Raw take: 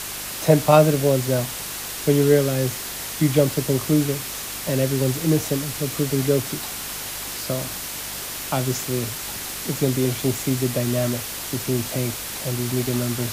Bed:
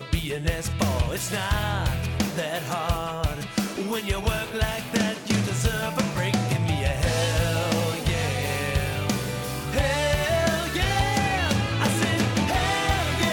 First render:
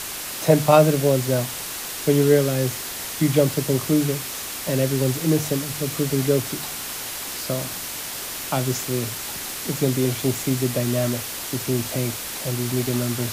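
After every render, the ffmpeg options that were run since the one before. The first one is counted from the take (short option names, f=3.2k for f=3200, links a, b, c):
-af "bandreject=f=50:t=h:w=4,bandreject=f=100:t=h:w=4,bandreject=f=150:t=h:w=4,bandreject=f=200:t=h:w=4"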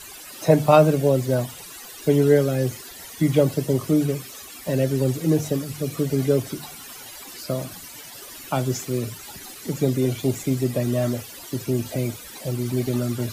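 -af "afftdn=nr=15:nf=-32"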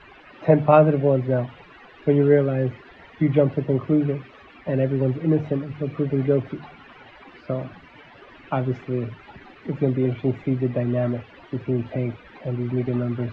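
-af "lowpass=f=2.5k:w=0.5412,lowpass=f=2.5k:w=1.3066"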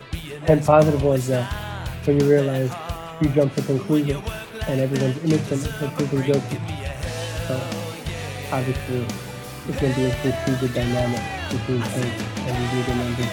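-filter_complex "[1:a]volume=-5dB[a];[0:a][a]amix=inputs=2:normalize=0"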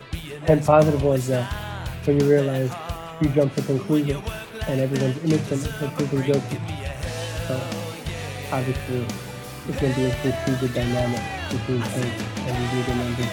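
-af "volume=-1dB"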